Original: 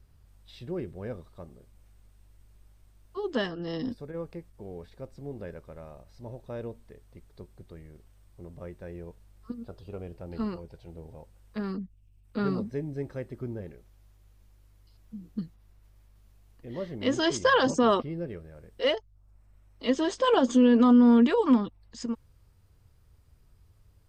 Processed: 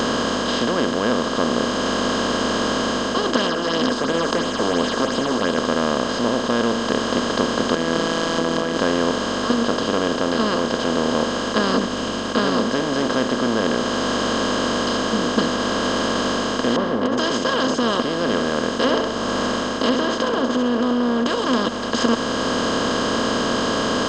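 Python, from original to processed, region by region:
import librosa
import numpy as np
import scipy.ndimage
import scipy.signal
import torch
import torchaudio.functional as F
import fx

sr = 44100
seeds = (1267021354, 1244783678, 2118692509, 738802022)

y = fx.chain(x, sr, fx.low_shelf(hz=440.0, db=-12.0),
    fx.phaser_stages(stages=6, low_hz=140.0, high_hz=1700.0, hz=2.9, feedback_pct=25),
    fx.doppler_dist(depth_ms=0.11), at=(3.36, 5.58))
y = fx.chain(y, sr, fx.hum_notches(base_hz=50, count=9),
    fx.over_compress(threshold_db=-53.0, ratio=-1.0),
    fx.robotise(hz=165.0), at=(7.75, 8.77))
y = fx.chain(y, sr, fx.lowpass(hz=1000.0, slope=24),
    fx.over_compress(threshold_db=-28.0, ratio=-0.5),
    fx.notch_comb(f0_hz=320.0), at=(16.76, 17.18))
y = fx.chain(y, sr, fx.env_lowpass_down(base_hz=690.0, full_db=-19.5),
    fx.room_flutter(wall_m=11.2, rt60_s=0.22), at=(18.17, 21.26))
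y = fx.bin_compress(y, sr, power=0.2)
y = fx.peak_eq(y, sr, hz=4200.0, db=6.5, octaves=1.4)
y = fx.rider(y, sr, range_db=4, speed_s=0.5)
y = F.gain(torch.from_numpy(y), -1.5).numpy()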